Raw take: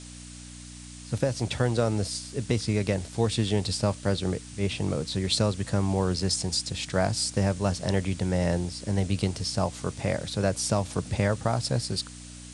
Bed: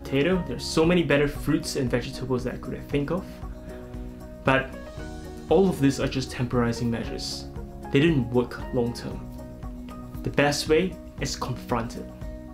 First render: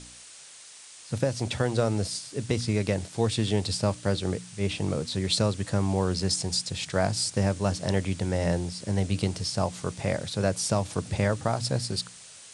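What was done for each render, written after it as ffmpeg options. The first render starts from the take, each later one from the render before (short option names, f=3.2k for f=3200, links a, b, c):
-af "bandreject=f=60:t=h:w=4,bandreject=f=120:t=h:w=4,bandreject=f=180:t=h:w=4,bandreject=f=240:t=h:w=4,bandreject=f=300:t=h:w=4"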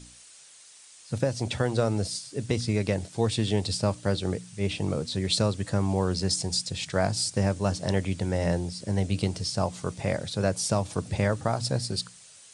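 -af "afftdn=nr=6:nf=-48"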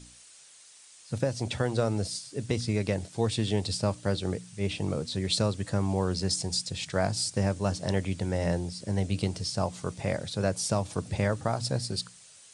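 -af "volume=-2dB"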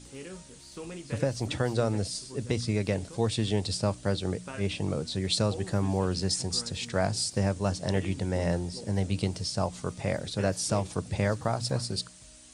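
-filter_complex "[1:a]volume=-20.5dB[a];[0:a][a]amix=inputs=2:normalize=0"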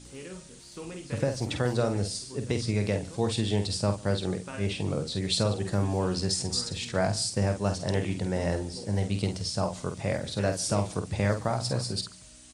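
-filter_complex "[0:a]asplit=2[a][b];[b]adelay=49,volume=-7.5dB[c];[a][c]amix=inputs=2:normalize=0,aecho=1:1:145:0.0708"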